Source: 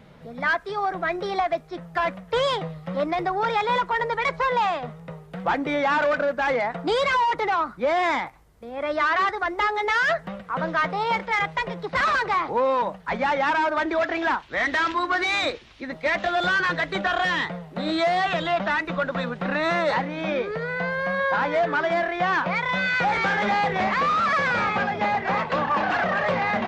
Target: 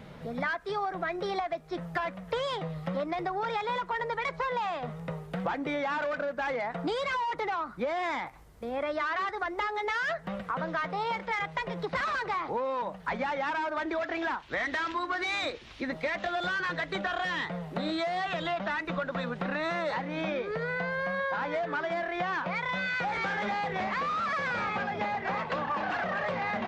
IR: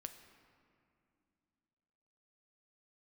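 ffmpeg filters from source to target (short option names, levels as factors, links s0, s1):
-af "acompressor=threshold=0.0251:ratio=6,volume=1.33"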